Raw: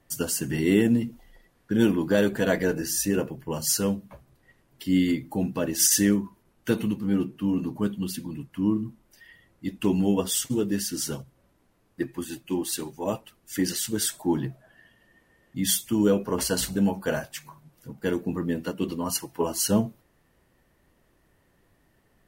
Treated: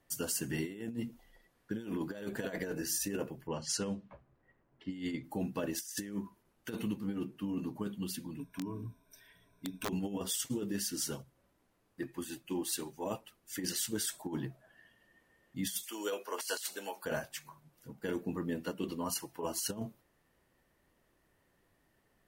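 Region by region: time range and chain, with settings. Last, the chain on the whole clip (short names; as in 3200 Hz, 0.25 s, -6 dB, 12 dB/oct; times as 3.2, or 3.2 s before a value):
3.47–5.24 low-pass opened by the level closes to 1500 Hz, open at -18.5 dBFS + bell 13000 Hz -15 dB 0.41 oct
8.39–9.89 ripple EQ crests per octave 1.6, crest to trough 18 dB + compressor 4:1, threshold -28 dBFS + wrapped overs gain 22.5 dB
15.83–17.05 HPF 360 Hz 24 dB/oct + tilt shelf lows -6.5 dB, about 1100 Hz
whole clip: low shelf 250 Hz -5 dB; negative-ratio compressor -27 dBFS, ratio -0.5; gain -8 dB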